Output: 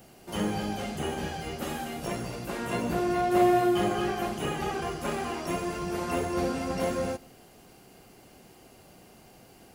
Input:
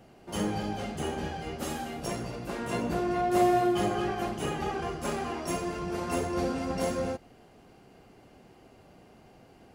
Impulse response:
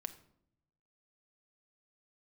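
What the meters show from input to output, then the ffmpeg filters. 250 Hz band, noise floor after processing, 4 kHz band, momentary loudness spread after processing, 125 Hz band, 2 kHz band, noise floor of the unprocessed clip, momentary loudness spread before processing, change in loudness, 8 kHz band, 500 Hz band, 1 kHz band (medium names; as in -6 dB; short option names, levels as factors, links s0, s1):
+1.5 dB, -55 dBFS, +2.0 dB, 11 LU, +0.5 dB, +2.5 dB, -56 dBFS, 10 LU, +1.5 dB, +0.5 dB, +1.5 dB, +1.0 dB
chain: -filter_complex "[0:a]aemphasis=mode=production:type=75kf,acrossover=split=3300[s0][s1];[s1]acompressor=threshold=0.00501:ratio=4:attack=1:release=60[s2];[s0][s2]amix=inputs=2:normalize=0,asplit=2[s3][s4];[1:a]atrim=start_sample=2205[s5];[s4][s5]afir=irnorm=-1:irlink=0,volume=0.562[s6];[s3][s6]amix=inputs=2:normalize=0,volume=0.75"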